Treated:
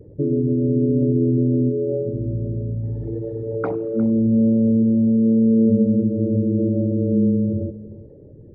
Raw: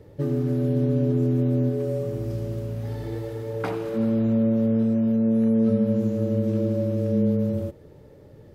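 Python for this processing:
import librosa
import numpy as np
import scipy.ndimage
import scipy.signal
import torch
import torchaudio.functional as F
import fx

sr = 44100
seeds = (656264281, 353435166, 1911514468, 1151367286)

y = fx.envelope_sharpen(x, sr, power=2.0)
y = y + 10.0 ** (-17.5 / 20.0) * np.pad(y, (int(356 * sr / 1000.0), 0))[:len(y)]
y = F.gain(torch.from_numpy(y), 4.5).numpy()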